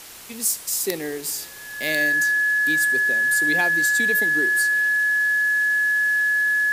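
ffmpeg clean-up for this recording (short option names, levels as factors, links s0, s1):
-af "bandreject=f=1700:w=30,afwtdn=0.01"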